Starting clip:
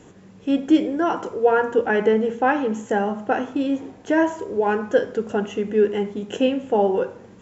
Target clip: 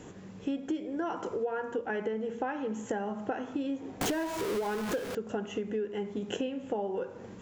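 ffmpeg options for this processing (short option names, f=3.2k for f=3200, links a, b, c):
-filter_complex "[0:a]asettb=1/sr,asplit=3[a][b][c];[a]atrim=end=4.014[d];[b]atrim=start=4.01:end=5.15,asetpts=PTS-STARTPTS,afade=t=in:d=0.004:c=qsin,afade=t=out:st=1.136:d=0.004:c=qsin,aeval=exprs='val(0)+0.5*0.1*sgn(val(0))':c=same[e];[c]atrim=start=5.146[f];[d][e]acrossfade=d=0.004:c1=hsin:c2=qsin[g];[g][f]acrossfade=d=0.004:c1=qsin:c2=hsin,acompressor=threshold=-30dB:ratio=12"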